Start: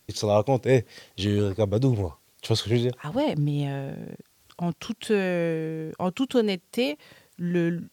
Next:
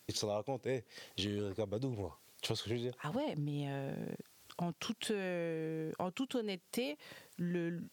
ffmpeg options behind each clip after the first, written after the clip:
-af "deesser=0.55,highpass=f=160:p=1,acompressor=threshold=-34dB:ratio=6,volume=-1dB"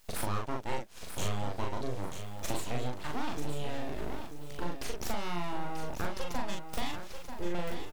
-filter_complex "[0:a]aeval=exprs='abs(val(0))':c=same,asplit=2[a][b];[b]adelay=40,volume=-2.5dB[c];[a][c]amix=inputs=2:normalize=0,aecho=1:1:938|1876|2814:0.376|0.0827|0.0182,volume=3.5dB"

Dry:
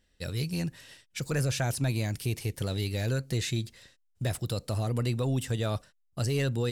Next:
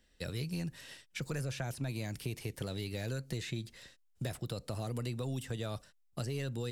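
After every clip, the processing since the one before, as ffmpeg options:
-filter_complex "[0:a]equalizer=f=93:t=o:w=0.7:g=-6.5,acrossover=split=130|3300[a][b][c];[a]acompressor=threshold=-43dB:ratio=4[d];[b]acompressor=threshold=-40dB:ratio=4[e];[c]acompressor=threshold=-52dB:ratio=4[f];[d][e][f]amix=inputs=3:normalize=0,volume=1dB"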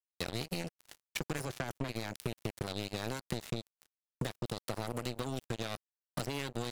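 -af "acompressor=threshold=-50dB:ratio=2.5,acrusher=bits=6:mix=0:aa=0.5,volume=11.5dB"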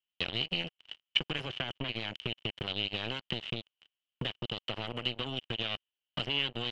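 -af "lowpass=f=3k:t=q:w=13,volume=-1.5dB"

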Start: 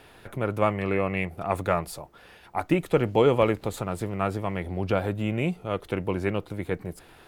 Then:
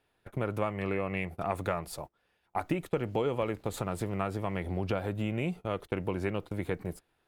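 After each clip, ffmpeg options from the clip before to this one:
-af "acompressor=threshold=-28dB:ratio=4,agate=range=-23dB:threshold=-40dB:ratio=16:detection=peak"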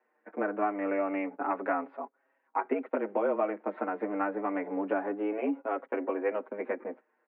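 -filter_complex "[0:a]highpass=f=160:t=q:w=0.5412,highpass=f=160:t=q:w=1.307,lowpass=f=2k:t=q:w=0.5176,lowpass=f=2k:t=q:w=0.7071,lowpass=f=2k:t=q:w=1.932,afreqshift=100,asplit=2[a][b];[b]adelay=6.1,afreqshift=-0.28[c];[a][c]amix=inputs=2:normalize=1,volume=5.5dB"

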